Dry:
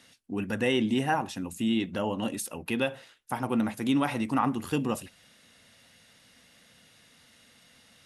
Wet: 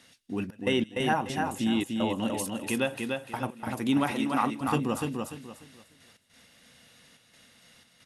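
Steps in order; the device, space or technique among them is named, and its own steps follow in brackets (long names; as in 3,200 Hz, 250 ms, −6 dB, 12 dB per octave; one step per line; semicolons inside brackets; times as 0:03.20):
trance gate with a delay (gate pattern "xxx.x.xxxxx.xxx." 90 BPM −24 dB; repeating echo 295 ms, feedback 28%, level −4 dB)
0:04.11–0:04.61: Bessel high-pass filter 230 Hz
delay with a high-pass on its return 160 ms, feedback 72%, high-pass 3,100 Hz, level −21 dB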